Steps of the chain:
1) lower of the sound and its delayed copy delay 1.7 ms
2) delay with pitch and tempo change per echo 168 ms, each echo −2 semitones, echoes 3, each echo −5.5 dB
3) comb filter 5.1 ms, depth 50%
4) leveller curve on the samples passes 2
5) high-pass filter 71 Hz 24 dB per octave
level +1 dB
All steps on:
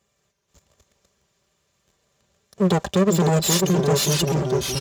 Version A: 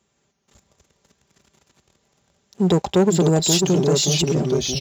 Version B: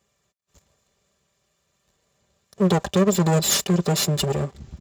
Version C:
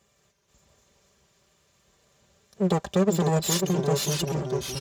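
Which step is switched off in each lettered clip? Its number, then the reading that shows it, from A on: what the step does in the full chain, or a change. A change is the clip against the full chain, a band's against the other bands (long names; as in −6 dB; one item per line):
1, 2 kHz band −4.0 dB
2, change in integrated loudness −1.0 LU
4, change in integrated loudness −5.0 LU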